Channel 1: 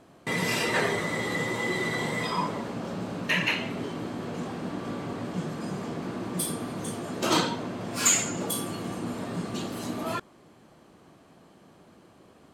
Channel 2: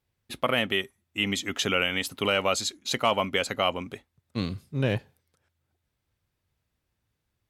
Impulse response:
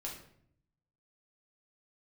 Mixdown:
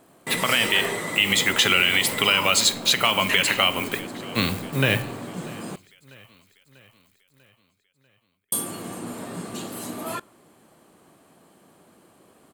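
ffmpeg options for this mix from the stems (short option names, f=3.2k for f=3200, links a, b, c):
-filter_complex "[0:a]lowshelf=f=130:g=-8.5,volume=0dB,asplit=3[a][b][c];[a]atrim=end=5.76,asetpts=PTS-STARTPTS,afade=t=out:st=5.756:d=0.004:c=hsin[d];[b]atrim=start=5.76:end=8.52,asetpts=PTS-STARTPTS,volume=0[e];[c]atrim=start=8.52,asetpts=PTS-STARTPTS,afade=t=in:d=0.004:c=hsin[f];[d][e][f]concat=n=3:v=0:a=1,asplit=2[g][h];[h]volume=-23.5dB[i];[1:a]equalizer=f=2k:t=o:w=2.9:g=14,acrossover=split=220|3000[j][k][l];[k]acompressor=threshold=-22dB:ratio=6[m];[j][m][l]amix=inputs=3:normalize=0,acrusher=bits=8:dc=4:mix=0:aa=0.000001,volume=1dB,asplit=3[n][o][p];[o]volume=-7.5dB[q];[p]volume=-21.5dB[r];[2:a]atrim=start_sample=2205[s];[i][q]amix=inputs=2:normalize=0[t];[t][s]afir=irnorm=-1:irlink=0[u];[r]aecho=0:1:643|1286|1929|2572|3215|3858|4501|5144:1|0.55|0.303|0.166|0.0915|0.0503|0.0277|0.0152[v];[g][n][u][v]amix=inputs=4:normalize=0,aexciter=amount=1.8:drive=9.1:freq=7.8k,alimiter=limit=-6.5dB:level=0:latency=1:release=82"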